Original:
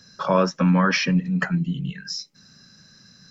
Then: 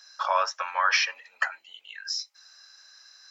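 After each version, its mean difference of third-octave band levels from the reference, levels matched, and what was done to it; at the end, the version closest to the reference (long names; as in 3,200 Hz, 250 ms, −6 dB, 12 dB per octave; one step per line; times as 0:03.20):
9.0 dB: Butterworth high-pass 700 Hz 36 dB per octave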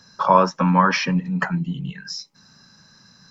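1.5 dB: parametric band 940 Hz +12 dB 0.69 octaves
level −1 dB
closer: second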